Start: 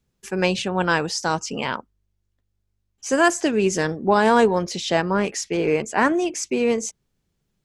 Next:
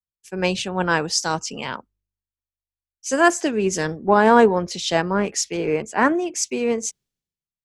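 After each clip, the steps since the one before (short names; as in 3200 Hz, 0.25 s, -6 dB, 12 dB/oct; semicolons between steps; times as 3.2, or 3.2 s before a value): in parallel at -2 dB: compressor, threshold -24 dBFS, peak gain reduction 12 dB; on the sum: three-band expander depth 100%; gain -3 dB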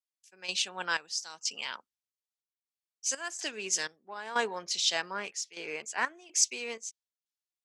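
step gate "x.xx..xxxx.x" 62 bpm -12 dB; band-pass 5200 Hz, Q 0.77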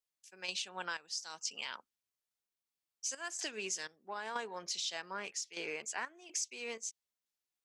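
compressor 6:1, threshold -38 dBFS, peak gain reduction 17 dB; gain +1.5 dB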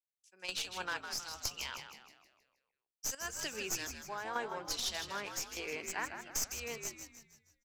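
tracing distortion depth 0.043 ms; frequency-shifting echo 0.158 s, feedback 57%, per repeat -77 Hz, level -7 dB; three-band expander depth 40%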